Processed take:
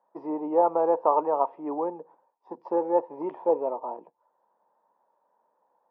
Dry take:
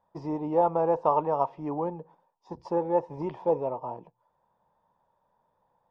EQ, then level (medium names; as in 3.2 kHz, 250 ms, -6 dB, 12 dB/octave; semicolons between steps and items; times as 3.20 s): high-pass 270 Hz 24 dB/octave; low-pass 1.6 kHz 12 dB/octave; +2.0 dB